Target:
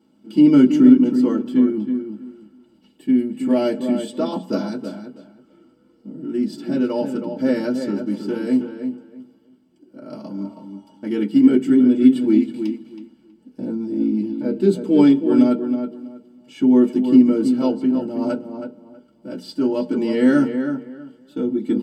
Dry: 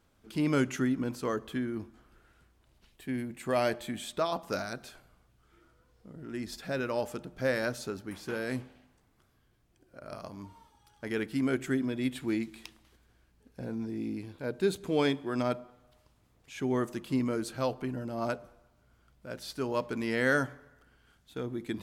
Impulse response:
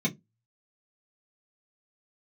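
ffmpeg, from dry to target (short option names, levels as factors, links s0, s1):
-filter_complex "[0:a]asplit=2[s0][s1];[s1]adelay=322,lowpass=f=2500:p=1,volume=0.422,asplit=2[s2][s3];[s3]adelay=322,lowpass=f=2500:p=1,volume=0.21,asplit=2[s4][s5];[s5]adelay=322,lowpass=f=2500:p=1,volume=0.21[s6];[s0][s2][s4][s6]amix=inputs=4:normalize=0[s7];[1:a]atrim=start_sample=2205,asetrate=57330,aresample=44100[s8];[s7][s8]afir=irnorm=-1:irlink=0,volume=0.794"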